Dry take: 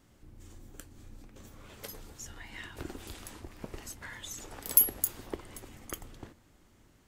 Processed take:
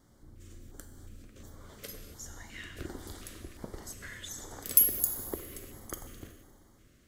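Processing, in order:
four-comb reverb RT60 1.8 s, combs from 31 ms, DRR 7 dB
auto-filter notch square 1.4 Hz 880–2,600 Hz

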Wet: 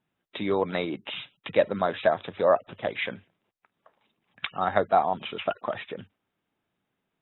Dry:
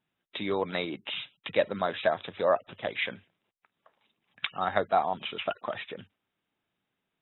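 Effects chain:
high-shelf EQ 2,100 Hz −8 dB
level +4.5 dB

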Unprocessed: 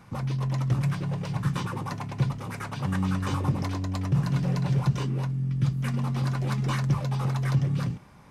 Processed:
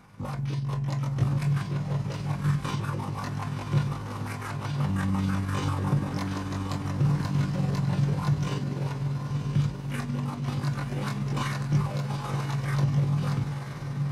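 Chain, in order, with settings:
feedback delay with all-pass diffusion 584 ms, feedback 45%, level −6 dB
time stretch by overlap-add 1.7×, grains 98 ms

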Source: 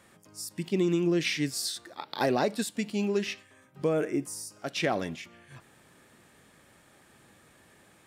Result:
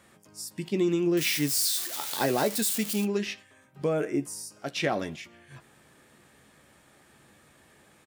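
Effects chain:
0:01.17–0:03.05: spike at every zero crossing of −23.5 dBFS
double-tracking delay 14 ms −10.5 dB

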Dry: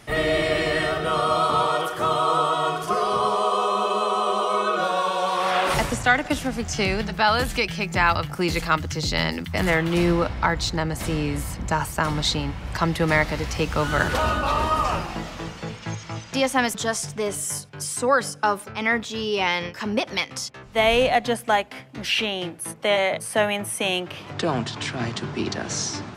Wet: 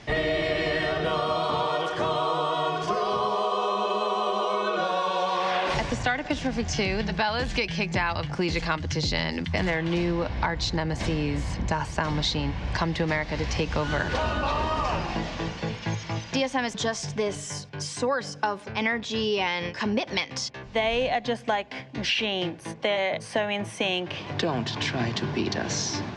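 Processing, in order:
notch filter 1,300 Hz, Q 6.4
downward compressor, threshold −25 dBFS, peak gain reduction 11 dB
low-pass filter 6,100 Hz 24 dB per octave
level +2.5 dB

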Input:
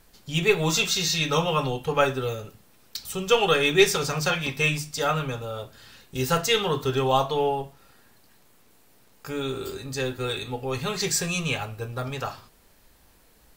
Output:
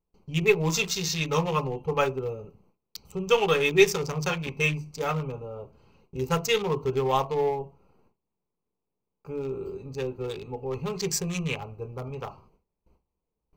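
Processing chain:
adaptive Wiener filter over 25 samples
noise gate with hold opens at −48 dBFS
EQ curve with evenly spaced ripples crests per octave 0.79, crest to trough 6 dB
level −2.5 dB

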